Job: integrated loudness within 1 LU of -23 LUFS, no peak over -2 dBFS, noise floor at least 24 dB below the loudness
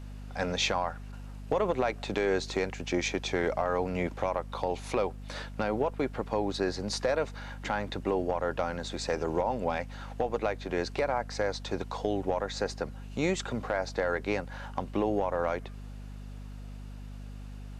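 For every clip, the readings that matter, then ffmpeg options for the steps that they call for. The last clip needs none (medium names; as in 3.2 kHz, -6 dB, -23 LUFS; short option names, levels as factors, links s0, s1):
hum 50 Hz; highest harmonic 250 Hz; hum level -40 dBFS; loudness -31.5 LUFS; peak level -15.0 dBFS; loudness target -23.0 LUFS
-> -af "bandreject=f=50:t=h:w=6,bandreject=f=100:t=h:w=6,bandreject=f=150:t=h:w=6,bandreject=f=200:t=h:w=6,bandreject=f=250:t=h:w=6"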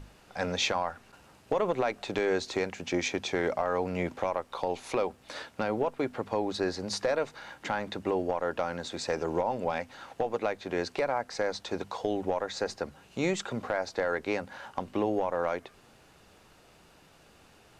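hum not found; loudness -32.0 LUFS; peak level -15.5 dBFS; loudness target -23.0 LUFS
-> -af "volume=2.82"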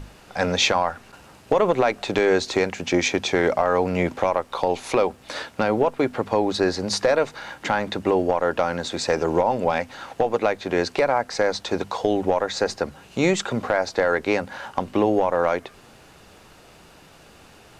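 loudness -23.0 LUFS; peak level -6.5 dBFS; noise floor -50 dBFS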